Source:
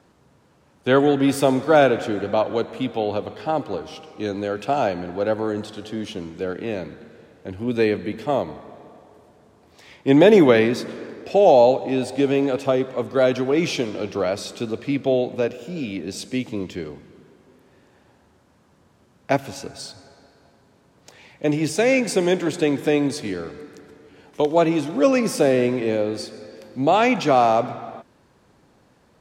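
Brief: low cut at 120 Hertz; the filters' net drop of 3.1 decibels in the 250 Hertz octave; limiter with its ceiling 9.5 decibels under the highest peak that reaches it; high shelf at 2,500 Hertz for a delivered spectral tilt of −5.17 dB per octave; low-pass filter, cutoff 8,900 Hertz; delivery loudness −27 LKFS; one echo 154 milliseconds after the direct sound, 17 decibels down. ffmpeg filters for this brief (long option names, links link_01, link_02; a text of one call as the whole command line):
ffmpeg -i in.wav -af "highpass=120,lowpass=8900,equalizer=frequency=250:width_type=o:gain=-3.5,highshelf=frequency=2500:gain=-7.5,alimiter=limit=-13dB:level=0:latency=1,aecho=1:1:154:0.141,volume=-2dB" out.wav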